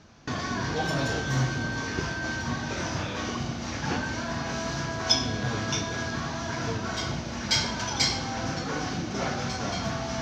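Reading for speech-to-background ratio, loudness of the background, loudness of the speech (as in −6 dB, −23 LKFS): −5.0 dB, −29.0 LKFS, −34.0 LKFS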